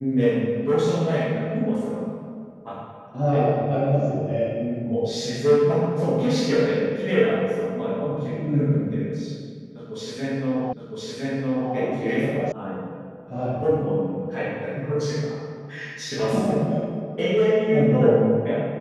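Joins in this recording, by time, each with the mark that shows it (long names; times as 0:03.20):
0:10.73: the same again, the last 1.01 s
0:12.52: cut off before it has died away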